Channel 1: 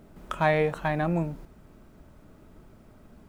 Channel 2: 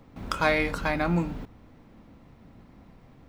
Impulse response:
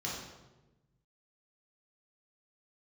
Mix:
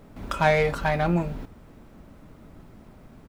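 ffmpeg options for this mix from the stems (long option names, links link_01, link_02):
-filter_complex "[0:a]volume=1.5dB[link_01];[1:a]asoftclip=type=tanh:threshold=-21.5dB,adelay=1.8,volume=0dB[link_02];[link_01][link_02]amix=inputs=2:normalize=0"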